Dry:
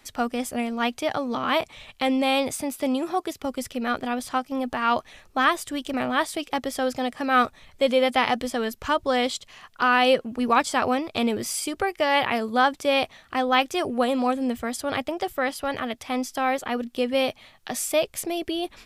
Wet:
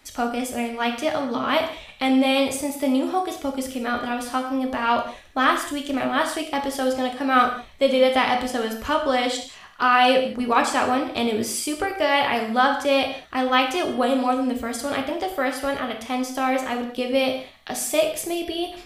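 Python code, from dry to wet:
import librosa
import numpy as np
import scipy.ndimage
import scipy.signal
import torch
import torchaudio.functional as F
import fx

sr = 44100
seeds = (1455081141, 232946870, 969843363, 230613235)

y = fx.rev_gated(x, sr, seeds[0], gate_ms=230, shape='falling', drr_db=2.5)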